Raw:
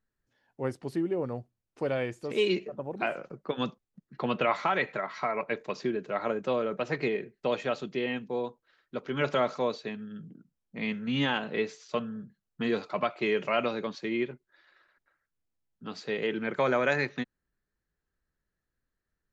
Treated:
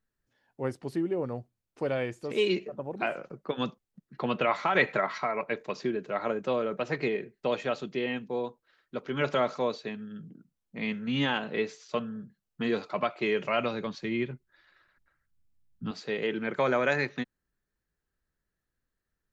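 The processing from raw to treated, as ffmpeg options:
ffmpeg -i in.wav -filter_complex "[0:a]asettb=1/sr,asplit=3[link_01][link_02][link_03];[link_01]atrim=end=4.754[link_04];[link_02]atrim=start=4.75:end=5.18,asetpts=PTS-STARTPTS,afade=type=in:duration=0.004:curve=qsin,afade=type=out:start_time=0.426:duration=0.004:curve=qsin,acontrast=34[link_05];[link_03]atrim=start=5.176[link_06];[link_04][link_05]acrossfade=duration=0.004:curve1=hsin:curve2=qsin[link_07];[link_07][link_06]acrossfade=duration=0.004:curve1=qsin:curve2=hsin,asettb=1/sr,asplit=3[link_08][link_09][link_10];[link_08]atrim=end=13.214[link_11];[link_09]atrim=start=13.21:end=15.91,asetpts=PTS-STARTPTS,afade=type=in:duration=0.004:curve=qsin,afade=type=out:start_time=2.696:duration=0.004:curve=qsin,asubboost=boost=8.5:cutoff=190[link_12];[link_10]atrim=start=15.906[link_13];[link_11][link_12]acrossfade=duration=0.004:curve1=hsin:curve2=qsin[link_14];[link_14][link_13]acrossfade=duration=0.004:curve1=qsin:curve2=hsin" out.wav

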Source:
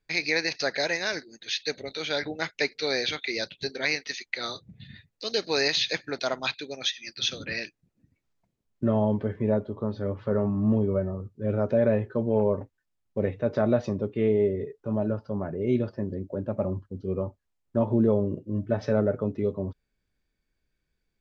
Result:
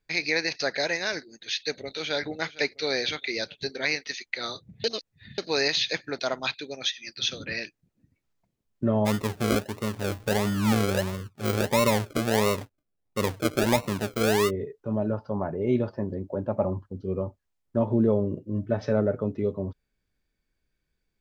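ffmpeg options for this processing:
ffmpeg -i in.wav -filter_complex "[0:a]asplit=2[link_01][link_02];[link_02]afade=type=in:start_time=1.49:duration=0.01,afade=type=out:start_time=2.16:duration=0.01,aecho=0:1:460|920|1380|1840:0.133352|0.0666761|0.033338|0.016669[link_03];[link_01][link_03]amix=inputs=2:normalize=0,asplit=3[link_04][link_05][link_06];[link_04]afade=type=out:start_time=9.05:duration=0.02[link_07];[link_05]acrusher=samples=38:mix=1:aa=0.000001:lfo=1:lforange=22.8:lforate=1.5,afade=type=in:start_time=9.05:duration=0.02,afade=type=out:start_time=14.49:duration=0.02[link_08];[link_06]afade=type=in:start_time=14.49:duration=0.02[link_09];[link_07][link_08][link_09]amix=inputs=3:normalize=0,asettb=1/sr,asplit=3[link_10][link_11][link_12];[link_10]atrim=end=15.134[link_13];[link_11]atrim=start=15.13:end=16.93,asetpts=PTS-STARTPTS,afade=type=in:duration=0.004:curve=qsin,afade=type=out:start_time=1.796:duration=0.004:curve=qsin,equalizer=frequency=880:width_type=o:width=0.88:gain=8.5[link_14];[link_12]atrim=start=16.926[link_15];[link_13][link_14]acrossfade=duration=0.004:curve1=hsin:curve2=qsin[link_16];[link_16][link_15]acrossfade=duration=0.004:curve1=qsin:curve2=hsin,asplit=3[link_17][link_18][link_19];[link_17]atrim=end=4.842[link_20];[link_18]atrim=start=4.838:end=5.382,asetpts=PTS-STARTPTS,areverse[link_21];[link_19]atrim=start=5.378[link_22];[link_20][link_21]acrossfade=duration=0.004:curve1=hsin:curve2=hsin[link_23];[link_23][link_22]acrossfade=duration=0.004:curve1=hsin:curve2=hsin" out.wav

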